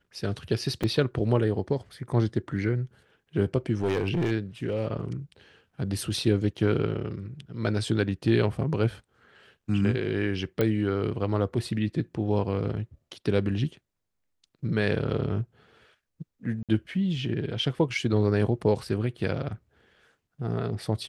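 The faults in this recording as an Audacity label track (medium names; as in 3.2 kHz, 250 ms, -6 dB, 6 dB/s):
0.830000	0.840000	dropout 5.6 ms
3.810000	4.320000	clipped -21.5 dBFS
10.610000	10.610000	pop -13 dBFS
16.630000	16.690000	dropout 57 ms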